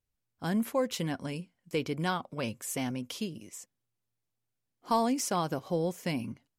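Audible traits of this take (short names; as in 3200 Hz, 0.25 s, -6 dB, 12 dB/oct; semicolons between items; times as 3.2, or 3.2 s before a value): noise floor -84 dBFS; spectral tilt -5.0 dB/oct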